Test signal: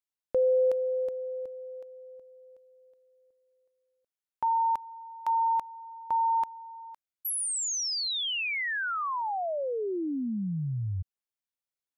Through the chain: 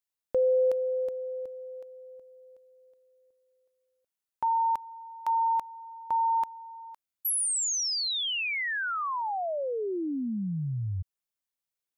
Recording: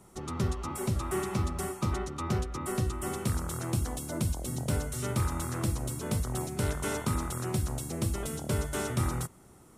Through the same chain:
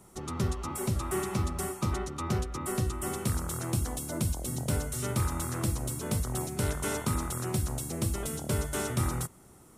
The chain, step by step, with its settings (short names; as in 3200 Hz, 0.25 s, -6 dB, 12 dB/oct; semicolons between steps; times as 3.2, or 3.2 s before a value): high shelf 7400 Hz +4.5 dB